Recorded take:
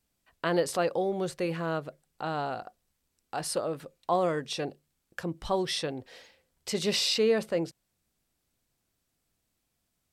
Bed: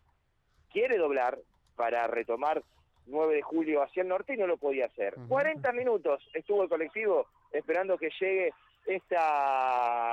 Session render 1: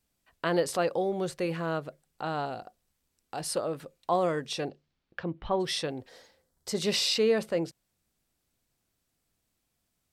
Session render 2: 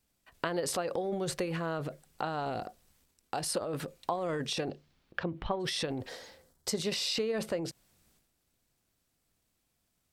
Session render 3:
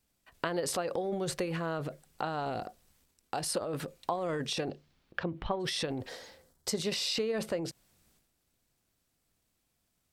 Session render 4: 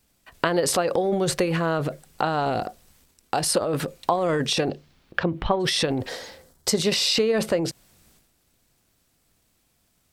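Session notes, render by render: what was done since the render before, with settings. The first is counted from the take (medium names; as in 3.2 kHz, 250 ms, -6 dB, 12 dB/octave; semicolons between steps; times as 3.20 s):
2.45–3.48 s: dynamic bell 1.3 kHz, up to -6 dB, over -47 dBFS, Q 0.93; 4.68–5.59 s: low-pass 6.4 kHz -> 2.7 kHz 24 dB/octave; 6.09–6.79 s: peaking EQ 2.6 kHz -11.5 dB 0.7 oct
transient shaper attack +6 dB, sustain +10 dB; compression 5:1, threshold -30 dBFS, peak gain reduction 12 dB
no audible change
trim +10.5 dB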